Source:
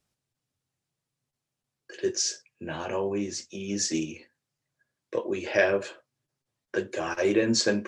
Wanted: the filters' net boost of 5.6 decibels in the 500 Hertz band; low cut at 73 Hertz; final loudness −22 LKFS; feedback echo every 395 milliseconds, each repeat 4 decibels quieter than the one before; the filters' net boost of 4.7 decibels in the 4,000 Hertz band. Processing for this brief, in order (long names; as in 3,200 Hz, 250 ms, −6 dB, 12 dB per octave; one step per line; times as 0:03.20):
high-pass filter 73 Hz
parametric band 500 Hz +7 dB
parametric band 4,000 Hz +6 dB
repeating echo 395 ms, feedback 63%, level −4 dB
level +1.5 dB